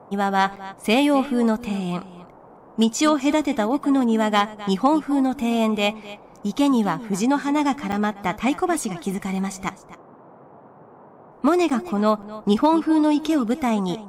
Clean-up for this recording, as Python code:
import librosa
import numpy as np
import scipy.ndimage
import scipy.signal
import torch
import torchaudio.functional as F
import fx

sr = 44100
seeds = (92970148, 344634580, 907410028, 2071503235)

y = fx.fix_declip(x, sr, threshold_db=-8.5)
y = fx.fix_interpolate(y, sr, at_s=(0.56, 7.92, 11.7, 12.22), length_ms=6.1)
y = fx.noise_reduce(y, sr, print_start_s=10.68, print_end_s=11.18, reduce_db=20.0)
y = fx.fix_echo_inverse(y, sr, delay_ms=258, level_db=-16.5)